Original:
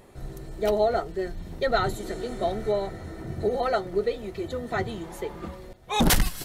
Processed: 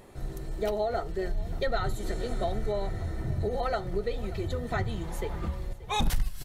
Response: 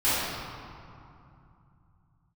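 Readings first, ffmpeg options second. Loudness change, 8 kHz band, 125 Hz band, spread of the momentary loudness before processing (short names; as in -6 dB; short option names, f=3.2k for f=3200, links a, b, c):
-5.0 dB, -11.0 dB, +1.0 dB, 15 LU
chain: -filter_complex "[0:a]asubboost=boost=4.5:cutoff=130,acompressor=threshold=-26dB:ratio=4,aecho=1:1:582:0.112,asplit=2[a][b];[1:a]atrim=start_sample=2205,atrim=end_sample=4410[c];[b][c]afir=irnorm=-1:irlink=0,volume=-31dB[d];[a][d]amix=inputs=2:normalize=0"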